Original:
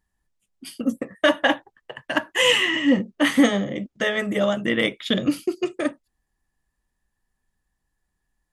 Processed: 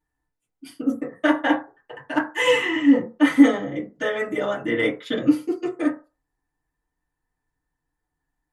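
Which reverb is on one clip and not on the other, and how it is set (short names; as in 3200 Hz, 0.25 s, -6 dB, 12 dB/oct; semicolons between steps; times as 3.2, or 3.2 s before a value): FDN reverb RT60 0.31 s, low-frequency decay 0.75×, high-frequency decay 0.3×, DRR -9 dB; gain -10.5 dB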